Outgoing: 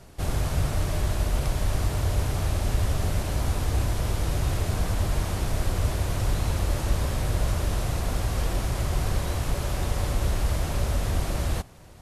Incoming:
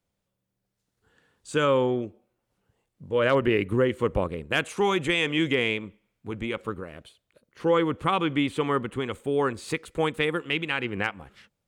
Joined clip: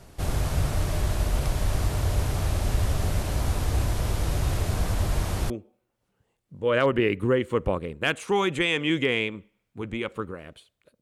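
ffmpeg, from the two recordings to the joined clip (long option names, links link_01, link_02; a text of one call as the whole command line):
ffmpeg -i cue0.wav -i cue1.wav -filter_complex "[0:a]apad=whole_dur=11.01,atrim=end=11.01,atrim=end=5.502[link_01];[1:a]atrim=start=1.988:end=7.5[link_02];[link_01][link_02]acrossfade=duration=0.004:curve1=hsin:curve2=hsin" out.wav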